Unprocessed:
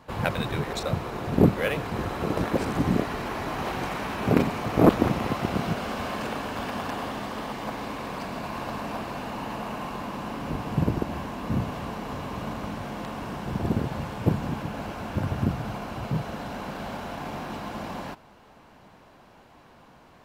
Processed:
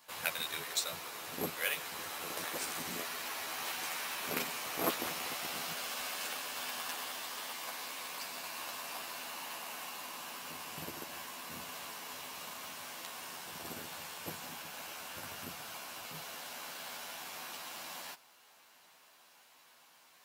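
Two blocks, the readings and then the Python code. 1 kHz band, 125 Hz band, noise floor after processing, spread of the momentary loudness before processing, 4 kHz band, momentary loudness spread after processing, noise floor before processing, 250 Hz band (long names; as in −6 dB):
−11.5 dB, −28.0 dB, −63 dBFS, 11 LU, 0.0 dB, 8 LU, −53 dBFS, −23.0 dB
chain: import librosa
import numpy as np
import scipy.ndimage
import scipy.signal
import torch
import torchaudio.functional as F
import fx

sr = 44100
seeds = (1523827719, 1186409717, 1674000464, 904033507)

y = np.diff(x, prepend=0.0)
y = fx.doubler(y, sr, ms=12.0, db=-4)
y = y * 10.0 ** (4.5 / 20.0)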